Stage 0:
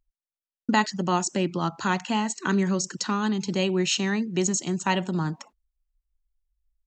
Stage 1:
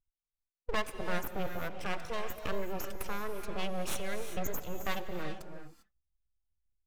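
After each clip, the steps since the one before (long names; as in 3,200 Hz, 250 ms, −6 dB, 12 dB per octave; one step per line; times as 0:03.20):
gate on every frequency bin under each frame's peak −20 dB strong
full-wave rectification
reverb whose tail is shaped and stops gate 420 ms rising, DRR 7 dB
level −8.5 dB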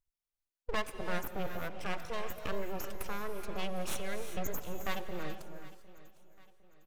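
repeating echo 756 ms, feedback 41%, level −19 dB
level −1.5 dB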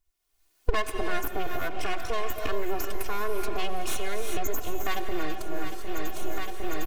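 camcorder AGC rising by 32 dB per second
comb filter 2.8 ms, depth 75%
in parallel at −1.5 dB: brickwall limiter −22 dBFS, peak gain reduction 11 dB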